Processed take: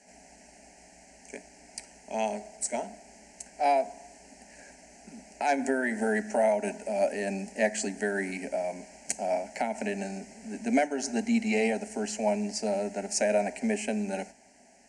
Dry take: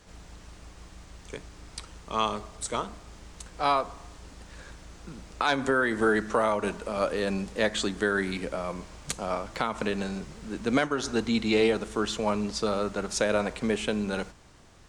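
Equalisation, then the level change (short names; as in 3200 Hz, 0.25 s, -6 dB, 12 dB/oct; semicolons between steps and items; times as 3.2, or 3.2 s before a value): speaker cabinet 160–9600 Hz, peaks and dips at 180 Hz -4 dB, 1400 Hz -4 dB, 3400 Hz -5 dB; fixed phaser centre 330 Hz, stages 6; fixed phaser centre 730 Hz, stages 8; +6.5 dB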